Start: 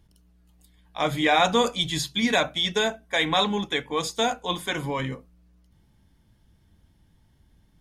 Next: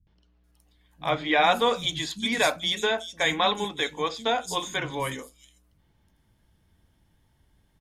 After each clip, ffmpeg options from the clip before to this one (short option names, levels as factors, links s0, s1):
-filter_complex "[0:a]lowshelf=f=210:g=-5,acrossover=split=210|4900[s0][s1][s2];[s1]adelay=70[s3];[s2]adelay=440[s4];[s0][s3][s4]amix=inputs=3:normalize=0"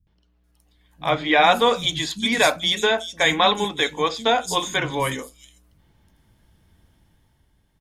-af "dynaudnorm=f=120:g=13:m=2.11"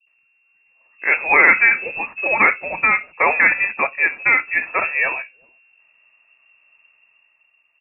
-filter_complex "[0:a]asplit=2[s0][s1];[s1]acrusher=bits=4:mix=0:aa=0.000001,volume=0.335[s2];[s0][s2]amix=inputs=2:normalize=0,lowpass=f=2400:t=q:w=0.5098,lowpass=f=2400:t=q:w=0.6013,lowpass=f=2400:t=q:w=0.9,lowpass=f=2400:t=q:w=2.563,afreqshift=-2800,volume=1.19"